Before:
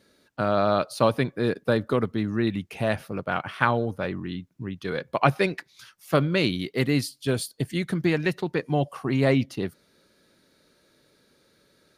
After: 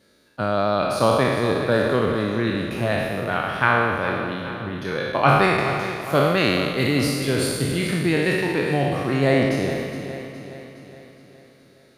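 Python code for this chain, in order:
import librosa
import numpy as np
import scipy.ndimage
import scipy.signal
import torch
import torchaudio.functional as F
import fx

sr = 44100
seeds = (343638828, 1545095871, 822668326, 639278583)

y = fx.spec_trails(x, sr, decay_s=1.72)
y = fx.echo_feedback(y, sr, ms=416, feedback_pct=53, wet_db=-11)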